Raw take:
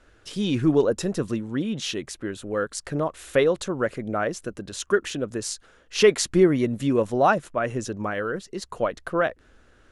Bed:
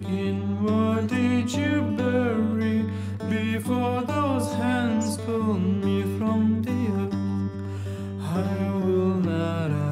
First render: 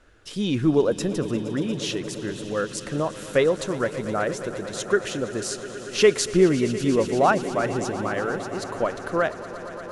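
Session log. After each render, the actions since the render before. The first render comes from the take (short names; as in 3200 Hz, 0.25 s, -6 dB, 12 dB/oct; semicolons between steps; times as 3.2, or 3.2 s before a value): swelling echo 0.117 s, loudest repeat 5, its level -17.5 dB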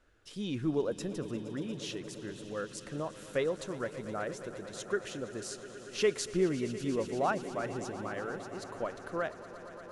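gain -11.5 dB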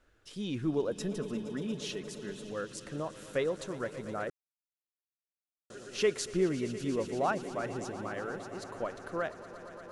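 0.95–2.51 comb 4.7 ms, depth 59%; 4.3–5.7 mute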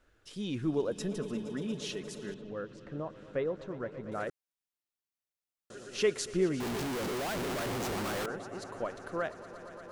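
2.34–4.12 tape spacing loss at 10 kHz 31 dB; 6.6–8.26 Schmitt trigger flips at -48 dBFS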